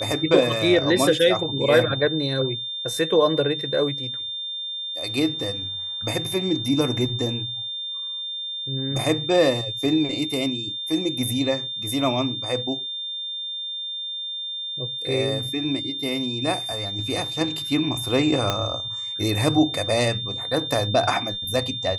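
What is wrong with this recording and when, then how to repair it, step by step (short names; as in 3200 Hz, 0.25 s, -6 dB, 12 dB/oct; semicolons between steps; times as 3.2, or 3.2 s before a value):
tone 3600 Hz -28 dBFS
18.5 pop -7 dBFS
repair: de-click; notch 3600 Hz, Q 30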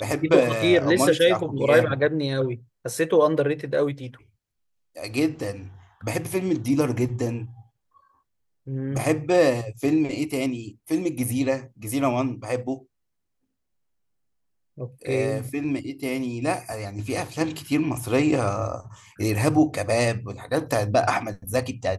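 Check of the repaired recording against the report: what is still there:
18.5 pop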